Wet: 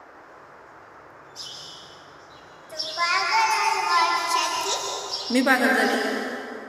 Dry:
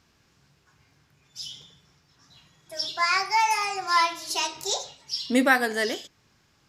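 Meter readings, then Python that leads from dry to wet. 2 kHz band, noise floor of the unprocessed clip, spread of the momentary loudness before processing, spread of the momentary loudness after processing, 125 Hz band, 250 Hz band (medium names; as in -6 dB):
+3.0 dB, -65 dBFS, 16 LU, 18 LU, no reading, +2.5 dB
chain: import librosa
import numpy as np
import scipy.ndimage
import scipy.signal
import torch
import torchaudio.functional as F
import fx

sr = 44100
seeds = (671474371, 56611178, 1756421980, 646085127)

y = fx.rev_plate(x, sr, seeds[0], rt60_s=2.7, hf_ratio=0.55, predelay_ms=115, drr_db=0.5)
y = fx.dmg_noise_band(y, sr, seeds[1], low_hz=290.0, high_hz=1600.0, level_db=-47.0)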